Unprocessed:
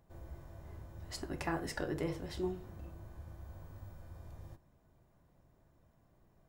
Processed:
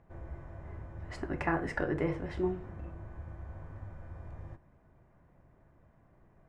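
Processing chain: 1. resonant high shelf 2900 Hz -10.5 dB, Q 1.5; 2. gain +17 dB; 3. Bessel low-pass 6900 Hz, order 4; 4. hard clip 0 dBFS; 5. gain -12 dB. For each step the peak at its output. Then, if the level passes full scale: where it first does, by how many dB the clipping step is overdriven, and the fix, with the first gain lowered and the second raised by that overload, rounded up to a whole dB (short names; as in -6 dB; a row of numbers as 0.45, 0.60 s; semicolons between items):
-22.0, -5.0, -5.0, -5.0, -17.0 dBFS; no overload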